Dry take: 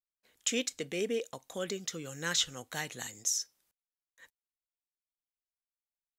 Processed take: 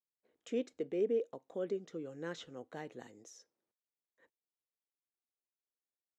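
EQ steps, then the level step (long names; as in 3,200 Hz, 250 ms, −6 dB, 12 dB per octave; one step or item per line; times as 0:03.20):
resonant band-pass 380 Hz, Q 1.4
+2.0 dB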